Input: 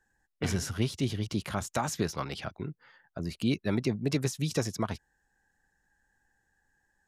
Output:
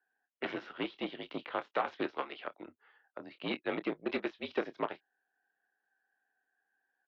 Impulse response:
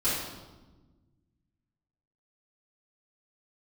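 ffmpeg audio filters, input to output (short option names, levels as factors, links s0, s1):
-filter_complex "[0:a]asplit=2[s0][s1];[s1]adelay=27,volume=0.355[s2];[s0][s2]amix=inputs=2:normalize=0,aeval=exprs='0.188*(cos(1*acos(clip(val(0)/0.188,-1,1)))-cos(1*PI/2))+0.00841*(cos(4*acos(clip(val(0)/0.188,-1,1)))-cos(4*PI/2))+0.015*(cos(7*acos(clip(val(0)/0.188,-1,1)))-cos(7*PI/2))':c=same,highpass=f=380:t=q:w=0.5412,highpass=f=380:t=q:w=1.307,lowpass=f=3500:t=q:w=0.5176,lowpass=f=3500:t=q:w=0.7071,lowpass=f=3500:t=q:w=1.932,afreqshift=-57"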